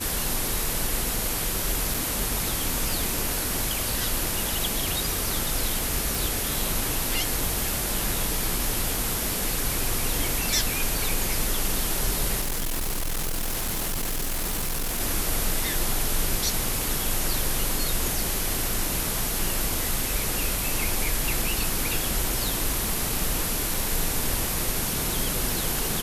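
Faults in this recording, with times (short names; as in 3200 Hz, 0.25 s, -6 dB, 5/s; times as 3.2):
1.94 gap 3.7 ms
6.15 pop
12.4–15.01 clipped -24 dBFS
23.74 gap 3.1 ms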